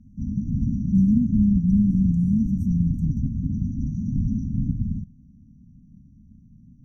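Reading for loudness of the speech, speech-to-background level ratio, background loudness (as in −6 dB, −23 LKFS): −22.0 LKFS, 5.0 dB, −27.0 LKFS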